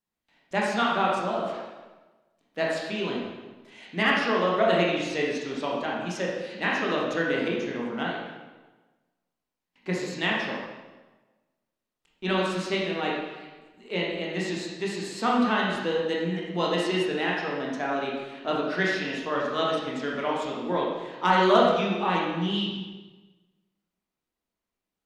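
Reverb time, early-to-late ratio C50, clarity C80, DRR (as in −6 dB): 1.2 s, 0.0 dB, 3.0 dB, −4.0 dB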